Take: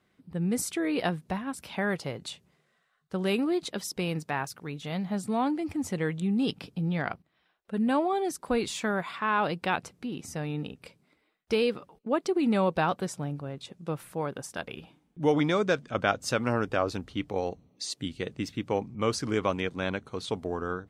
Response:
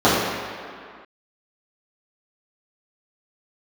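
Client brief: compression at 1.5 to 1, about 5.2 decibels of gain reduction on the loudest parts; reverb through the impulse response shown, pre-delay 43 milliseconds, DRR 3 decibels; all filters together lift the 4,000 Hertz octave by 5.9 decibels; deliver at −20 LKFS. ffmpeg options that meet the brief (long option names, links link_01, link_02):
-filter_complex "[0:a]equalizer=frequency=4000:width_type=o:gain=7.5,acompressor=threshold=-34dB:ratio=1.5,asplit=2[link_01][link_02];[1:a]atrim=start_sample=2205,adelay=43[link_03];[link_02][link_03]afir=irnorm=-1:irlink=0,volume=-29.5dB[link_04];[link_01][link_04]amix=inputs=2:normalize=0,volume=11dB"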